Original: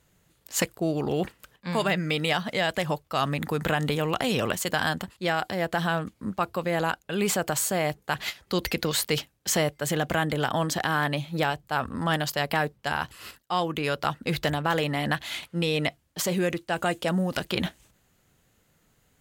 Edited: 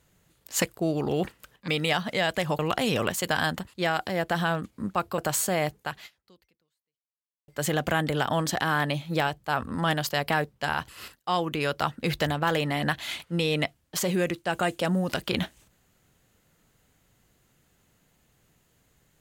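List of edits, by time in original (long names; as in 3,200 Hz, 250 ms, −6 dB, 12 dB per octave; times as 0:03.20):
0:01.68–0:02.08: remove
0:02.99–0:04.02: remove
0:06.61–0:07.41: remove
0:08.03–0:09.71: fade out exponential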